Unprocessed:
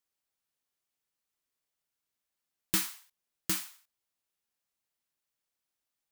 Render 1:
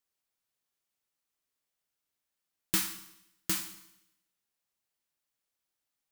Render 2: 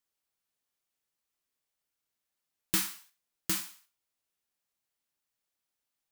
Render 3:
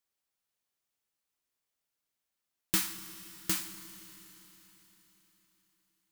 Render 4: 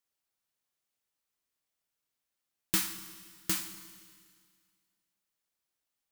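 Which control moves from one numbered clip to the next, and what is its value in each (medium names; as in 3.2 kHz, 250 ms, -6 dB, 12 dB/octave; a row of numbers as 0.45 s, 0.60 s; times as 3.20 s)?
Schroeder reverb, RT60: 0.87 s, 0.31 s, 4.2 s, 2 s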